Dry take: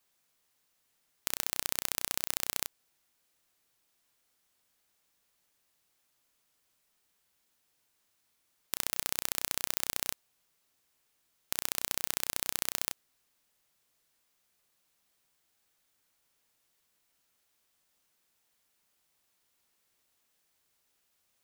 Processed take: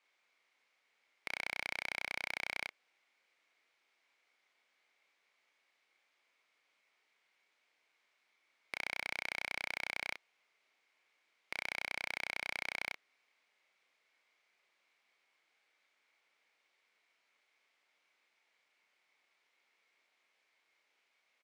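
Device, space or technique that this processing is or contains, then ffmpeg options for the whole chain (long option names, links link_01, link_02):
intercom: -filter_complex "[0:a]highpass=410,lowpass=3600,equalizer=frequency=2200:width_type=o:width=0.27:gain=11.5,asoftclip=type=tanh:threshold=-24.5dB,asplit=2[link_01][link_02];[link_02]adelay=31,volume=-6dB[link_03];[link_01][link_03]amix=inputs=2:normalize=0,volume=1.5dB"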